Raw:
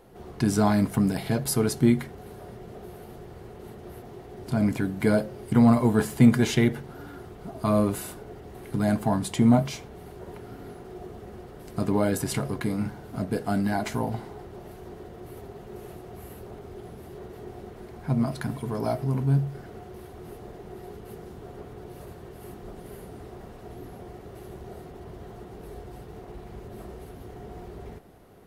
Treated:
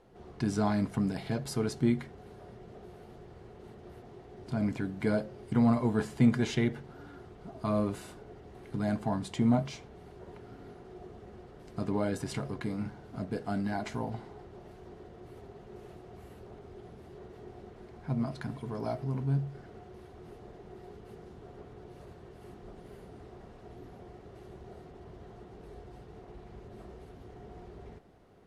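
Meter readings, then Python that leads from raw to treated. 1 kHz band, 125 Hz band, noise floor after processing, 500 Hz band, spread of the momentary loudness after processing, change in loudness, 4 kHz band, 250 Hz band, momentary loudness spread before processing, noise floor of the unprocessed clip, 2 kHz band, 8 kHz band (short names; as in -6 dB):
-7.0 dB, -7.0 dB, -52 dBFS, -7.0 dB, 21 LU, -7.0 dB, -7.5 dB, -7.0 dB, 21 LU, -45 dBFS, -7.0 dB, -12.5 dB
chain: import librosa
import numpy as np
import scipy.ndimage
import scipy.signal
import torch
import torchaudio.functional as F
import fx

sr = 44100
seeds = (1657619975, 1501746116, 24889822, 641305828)

y = scipy.signal.sosfilt(scipy.signal.butter(2, 6800.0, 'lowpass', fs=sr, output='sos'), x)
y = F.gain(torch.from_numpy(y), -7.0).numpy()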